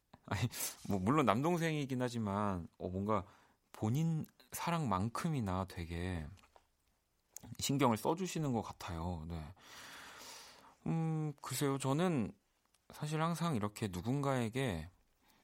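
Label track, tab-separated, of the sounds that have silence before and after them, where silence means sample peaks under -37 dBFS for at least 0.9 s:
7.370000	9.430000	sound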